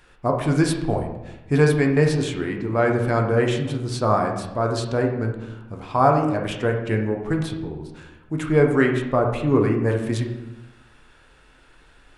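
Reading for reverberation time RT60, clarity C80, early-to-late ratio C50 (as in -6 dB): 0.95 s, 8.5 dB, 6.0 dB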